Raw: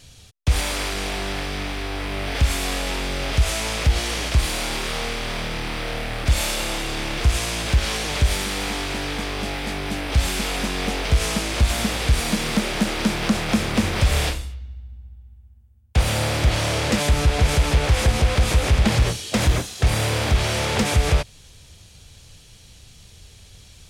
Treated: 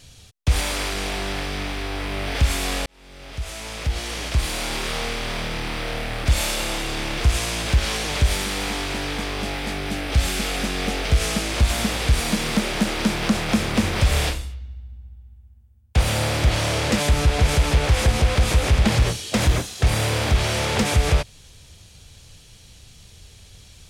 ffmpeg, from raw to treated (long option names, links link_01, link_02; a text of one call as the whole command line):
ffmpeg -i in.wav -filter_complex "[0:a]asettb=1/sr,asplit=3[link_01][link_02][link_03];[link_01]atrim=end=9.744[link_04];[link_02]atrim=start=9.74:end=11.49,asetpts=PTS-STARTPTS,afade=type=in:duration=0.004:curve=qsin,afade=type=out:start_time=1.746:duration=0.004:curve=qsin,bandreject=frequency=980:width=8[link_05];[link_03]atrim=start=11.486[link_06];[link_04][link_05]acrossfade=duration=0.004:curve1=hsin:curve2=qsin[link_07];[link_07][link_06]acrossfade=duration=0.004:curve1=qsin:curve2=hsin,asplit=2[link_08][link_09];[link_08]atrim=end=2.86,asetpts=PTS-STARTPTS,afade=type=out:start_time=2.856:duration=0.004:curve=hsin[link_10];[link_09]atrim=start=2.86,asetpts=PTS-STARTPTS,afade=type=in:duration=2.01[link_11];[link_10][link_11]concat=n=2:v=0:a=1" out.wav